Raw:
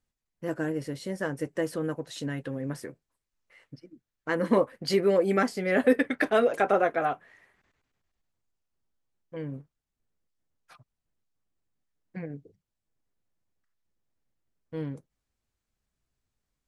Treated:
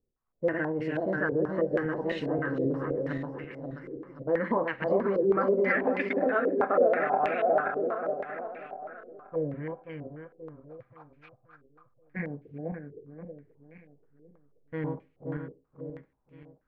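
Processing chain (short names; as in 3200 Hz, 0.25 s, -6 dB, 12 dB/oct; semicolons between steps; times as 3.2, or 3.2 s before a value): regenerating reverse delay 0.265 s, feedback 63%, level -1.5 dB; compressor 4:1, threshold -28 dBFS, peak gain reduction 12 dB; Schroeder reverb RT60 0.33 s, combs from 30 ms, DRR 15 dB; stepped low-pass 6.2 Hz 430–2500 Hz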